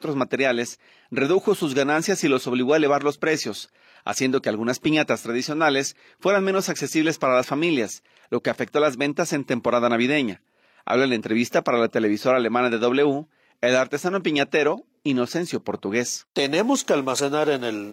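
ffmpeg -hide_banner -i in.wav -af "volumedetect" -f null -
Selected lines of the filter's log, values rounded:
mean_volume: -22.6 dB
max_volume: -5.7 dB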